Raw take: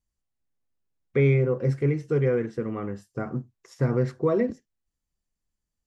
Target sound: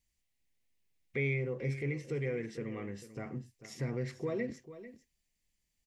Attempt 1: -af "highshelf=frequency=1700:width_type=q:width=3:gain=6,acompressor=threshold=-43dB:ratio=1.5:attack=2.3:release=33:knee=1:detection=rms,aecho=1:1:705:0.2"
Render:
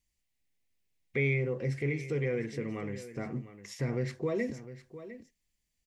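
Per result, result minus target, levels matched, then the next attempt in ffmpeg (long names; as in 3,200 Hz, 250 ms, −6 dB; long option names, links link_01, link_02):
echo 261 ms late; downward compressor: peak gain reduction −4 dB
-af "highshelf=frequency=1700:width_type=q:width=3:gain=6,acompressor=threshold=-43dB:ratio=1.5:attack=2.3:release=33:knee=1:detection=rms,aecho=1:1:444:0.2"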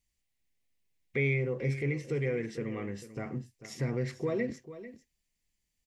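downward compressor: peak gain reduction −4 dB
-af "highshelf=frequency=1700:width_type=q:width=3:gain=6,acompressor=threshold=-54.5dB:ratio=1.5:attack=2.3:release=33:knee=1:detection=rms,aecho=1:1:444:0.2"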